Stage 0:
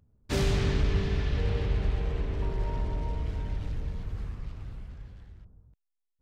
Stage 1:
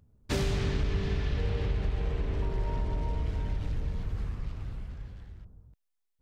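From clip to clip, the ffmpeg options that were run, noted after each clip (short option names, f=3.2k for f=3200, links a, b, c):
-af "acompressor=threshold=-29dB:ratio=3,volume=2.5dB"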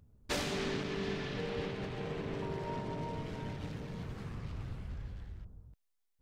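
-af "afftfilt=real='re*lt(hypot(re,im),0.178)':imag='im*lt(hypot(re,im),0.178)':win_size=1024:overlap=0.75"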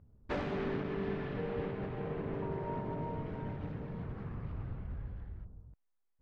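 -af "lowpass=1.6k,volume=1dB"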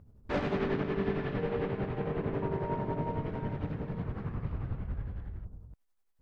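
-af "tremolo=f=11:d=0.51,volume=7dB"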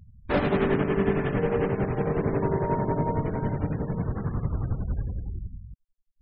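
-af "afftfilt=real='re*gte(hypot(re,im),0.00501)':imag='im*gte(hypot(re,im),0.00501)':win_size=1024:overlap=0.75,volume=7.5dB"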